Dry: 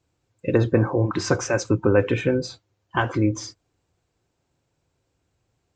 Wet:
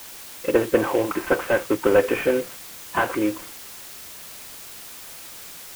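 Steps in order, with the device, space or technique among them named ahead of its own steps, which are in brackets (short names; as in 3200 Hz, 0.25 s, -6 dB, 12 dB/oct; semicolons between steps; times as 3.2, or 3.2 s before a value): army field radio (BPF 390–3100 Hz; CVSD 16 kbps; white noise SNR 15 dB); gain +5 dB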